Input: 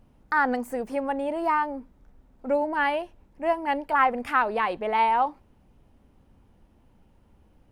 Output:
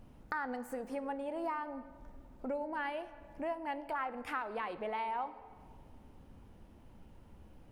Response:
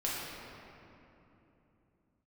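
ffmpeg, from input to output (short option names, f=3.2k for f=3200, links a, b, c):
-filter_complex "[0:a]acompressor=threshold=-43dB:ratio=3,asplit=2[a][b];[1:a]atrim=start_sample=2205,asetrate=79380,aresample=44100[c];[b][c]afir=irnorm=-1:irlink=0,volume=-12.5dB[d];[a][d]amix=inputs=2:normalize=0,volume=1dB"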